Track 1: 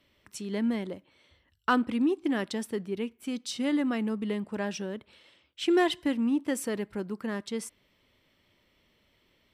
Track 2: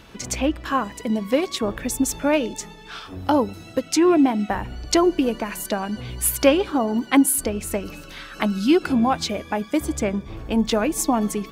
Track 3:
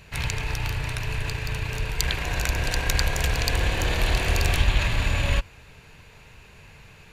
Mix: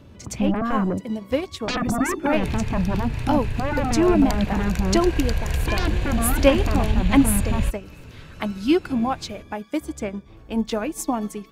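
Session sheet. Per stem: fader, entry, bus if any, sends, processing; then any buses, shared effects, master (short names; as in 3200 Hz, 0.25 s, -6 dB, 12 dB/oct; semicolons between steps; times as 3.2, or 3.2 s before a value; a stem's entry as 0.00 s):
-7.5 dB, 0.00 s, bus A, no send, elliptic low-pass 1200 Hz; bell 110 Hz +7.5 dB 2.2 oct; sine folder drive 17 dB, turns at -13.5 dBFS
0.0 dB, 0.00 s, no bus, no send, upward expander 1.5:1, over -33 dBFS
-2.5 dB, 2.30 s, bus A, no send, dry
bus A: 0.0 dB, low shelf 430 Hz +9.5 dB; compressor 1.5:1, threshold -28 dBFS, peak gain reduction 7.5 dB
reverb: off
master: dry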